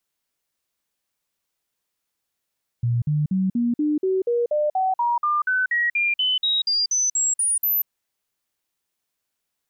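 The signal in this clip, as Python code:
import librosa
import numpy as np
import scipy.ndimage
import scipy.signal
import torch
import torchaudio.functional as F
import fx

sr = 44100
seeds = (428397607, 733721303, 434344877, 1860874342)

y = fx.stepped_sweep(sr, from_hz=119.0, direction='up', per_octave=3, tones=21, dwell_s=0.19, gap_s=0.05, level_db=-18.0)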